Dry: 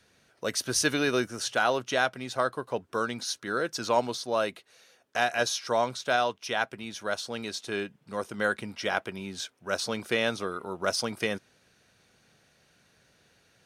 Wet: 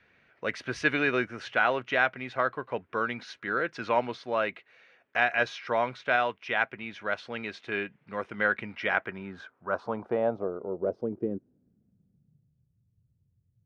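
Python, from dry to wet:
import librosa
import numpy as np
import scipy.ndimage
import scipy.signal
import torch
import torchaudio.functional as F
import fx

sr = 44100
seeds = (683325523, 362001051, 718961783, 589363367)

y = fx.filter_sweep_lowpass(x, sr, from_hz=2200.0, to_hz=110.0, start_s=8.85, end_s=12.73, q=2.6)
y = y * 10.0 ** (-2.0 / 20.0)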